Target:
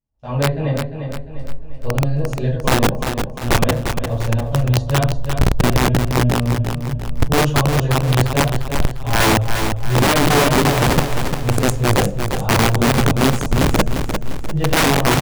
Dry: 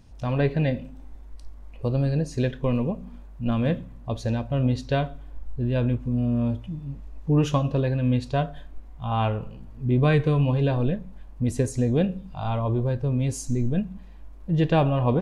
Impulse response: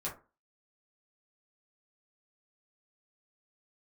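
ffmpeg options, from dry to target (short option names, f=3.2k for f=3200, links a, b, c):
-filter_complex "[0:a]asubboost=boost=8:cutoff=73,agate=range=-33dB:threshold=-26dB:ratio=3:detection=peak,equalizer=f=650:t=o:w=0.7:g=3.5,bandreject=f=58.14:t=h:w=4,bandreject=f=116.28:t=h:w=4,bandreject=f=174.42:t=h:w=4,bandreject=f=232.56:t=h:w=4,bandreject=f=290.7:t=h:w=4,bandreject=f=348.84:t=h:w=4[a];[1:a]atrim=start_sample=2205,asetrate=34398,aresample=44100[b];[a][b]afir=irnorm=-1:irlink=0,aeval=exprs='(mod(2.37*val(0)+1,2)-1)/2.37':c=same,aecho=1:1:349|698|1047|1396|1745:0.447|0.205|0.0945|0.0435|0.02,volume=-2dB"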